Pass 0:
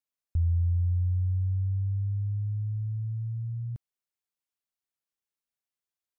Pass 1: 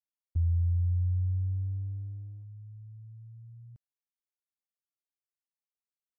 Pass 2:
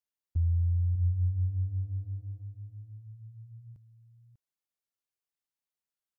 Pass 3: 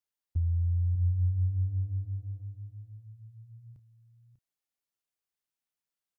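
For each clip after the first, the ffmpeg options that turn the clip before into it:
-af "agate=range=-14dB:threshold=-28dB:ratio=16:detection=peak,volume=-1.5dB"
-af "aecho=1:1:595:0.335"
-filter_complex "[0:a]asplit=2[a][b];[b]adelay=31,volume=-12dB[c];[a][c]amix=inputs=2:normalize=0"

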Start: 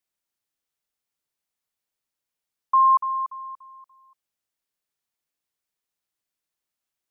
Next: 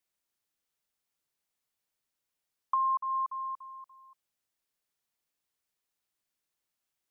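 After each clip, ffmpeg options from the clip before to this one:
-af "acompressor=threshold=-29dB:ratio=4"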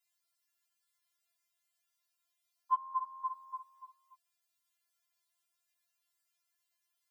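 -af "highpass=910,afftfilt=real='re*4*eq(mod(b,16),0)':imag='im*4*eq(mod(b,16),0)':win_size=2048:overlap=0.75,volume=5dB"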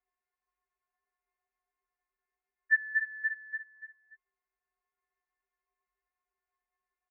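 -af "aecho=1:1:4.7:0.63,lowpass=f=2.4k:t=q:w=0.5098,lowpass=f=2.4k:t=q:w=0.6013,lowpass=f=2.4k:t=q:w=0.9,lowpass=f=2.4k:t=q:w=2.563,afreqshift=-2800,volume=1.5dB"

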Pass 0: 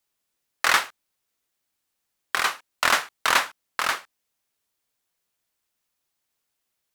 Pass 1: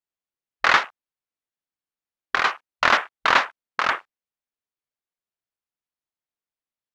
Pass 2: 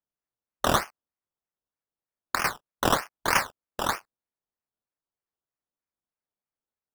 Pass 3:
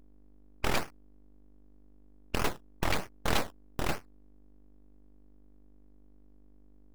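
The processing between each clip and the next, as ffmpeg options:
-af "lowpass=f=2.6k:p=1,afwtdn=0.0126,volume=4.5dB"
-af "acrusher=samples=16:mix=1:aa=0.000001:lfo=1:lforange=9.6:lforate=3.2,volume=-5.5dB"
-af "afftfilt=real='re*lt(hypot(re,im),0.251)':imag='im*lt(hypot(re,im),0.251)':win_size=1024:overlap=0.75,aeval=exprs='val(0)+0.002*(sin(2*PI*50*n/s)+sin(2*PI*2*50*n/s)/2+sin(2*PI*3*50*n/s)/3+sin(2*PI*4*50*n/s)/4+sin(2*PI*5*50*n/s)/5)':c=same,aeval=exprs='abs(val(0))':c=same"

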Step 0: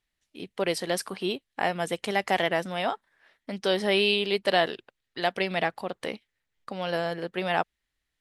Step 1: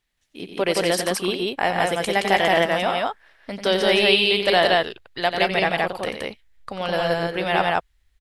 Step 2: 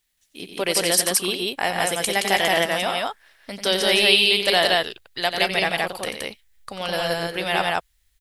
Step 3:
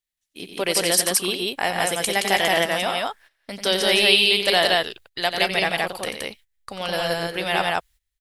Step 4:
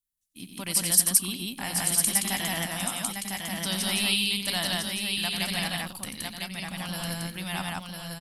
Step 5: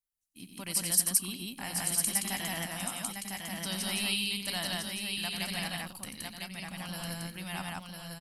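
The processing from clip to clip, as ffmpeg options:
-filter_complex "[0:a]asubboost=boost=8:cutoff=74,asplit=2[a][b];[b]aecho=0:1:90.38|172:0.398|0.891[c];[a][c]amix=inputs=2:normalize=0,volume=5dB"
-af "crystalizer=i=3.5:c=0,volume=-3.5dB"
-af "agate=range=-15dB:threshold=-46dB:ratio=16:detection=peak"
-af "firequalizer=gain_entry='entry(250,0);entry(400,-23);entry(960,-9);entry(1600,-12);entry(9800,2)':delay=0.05:min_phase=1,aecho=1:1:1003:0.596"
-af "bandreject=f=3.5k:w=11,volume=-5.5dB"

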